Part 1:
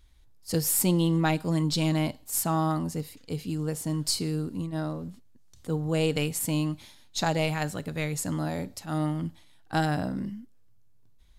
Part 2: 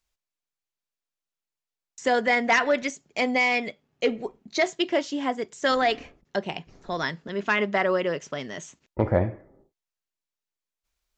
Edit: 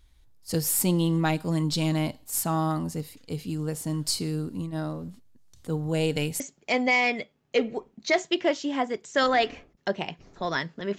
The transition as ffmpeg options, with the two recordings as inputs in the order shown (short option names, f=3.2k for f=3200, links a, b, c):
-filter_complex "[0:a]asettb=1/sr,asplit=3[a][b][c];[a]atrim=end=5.924[d];[b]atrim=start=5.92:end=6.4,asetpts=PTS-STARTPTS,afade=t=in:d=0.004:c=qsin,afade=t=out:st=0.476:d=0.004:c=qsin,asuperstop=centerf=1200:order=4:qfactor=5.2[e];[c]atrim=start=6.396[f];[d][e]acrossfade=d=0.004:c1=hsin:c2=qsin[g];[g][f]acrossfade=d=0.004:c1=qsin:c2=hsin,apad=whole_dur=10.98,atrim=end=10.98,atrim=end=6.402[h];[1:a]atrim=start=2.878:end=7.46[i];[h][i]acrossfade=d=0.004:c1=hsin:c2=hsin"